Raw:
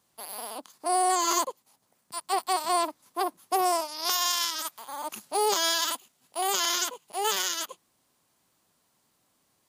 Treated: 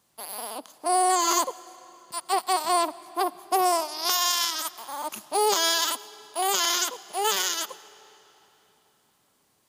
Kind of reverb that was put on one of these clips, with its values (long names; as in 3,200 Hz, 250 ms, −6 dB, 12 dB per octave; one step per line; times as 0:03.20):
comb and all-pass reverb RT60 3.7 s, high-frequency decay 0.85×, pre-delay 55 ms, DRR 19 dB
level +2.5 dB